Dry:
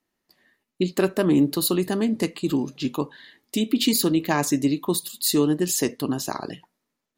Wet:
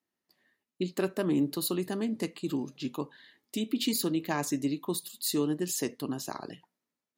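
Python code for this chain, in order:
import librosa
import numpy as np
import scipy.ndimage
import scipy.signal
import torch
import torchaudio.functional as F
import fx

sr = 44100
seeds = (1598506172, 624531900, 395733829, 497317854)

y = scipy.signal.sosfilt(scipy.signal.butter(2, 85.0, 'highpass', fs=sr, output='sos'), x)
y = y * 10.0 ** (-8.5 / 20.0)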